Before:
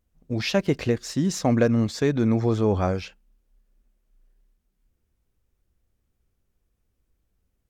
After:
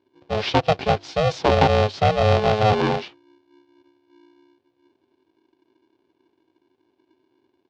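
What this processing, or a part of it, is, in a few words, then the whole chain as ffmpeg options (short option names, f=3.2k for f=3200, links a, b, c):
ring modulator pedal into a guitar cabinet: -af "aeval=exprs='val(0)*sgn(sin(2*PI*320*n/s))':c=same,highpass=93,equalizer=f=97:t=q:w=4:g=6,equalizer=f=210:t=q:w=4:g=-5,equalizer=f=370:t=q:w=4:g=5,equalizer=f=710:t=q:w=4:g=4,equalizer=f=1.3k:t=q:w=4:g=-4,equalizer=f=1.9k:t=q:w=4:g=-5,lowpass=f=4.5k:w=0.5412,lowpass=f=4.5k:w=1.3066,volume=3dB"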